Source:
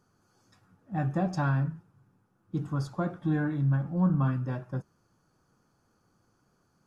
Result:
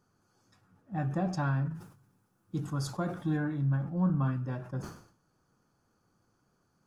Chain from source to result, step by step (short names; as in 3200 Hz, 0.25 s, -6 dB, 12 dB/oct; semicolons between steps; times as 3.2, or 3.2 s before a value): 1.74–3.36 high shelf 3400 Hz -> 5100 Hz +11.5 dB; sustainer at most 100 dB/s; gain -3 dB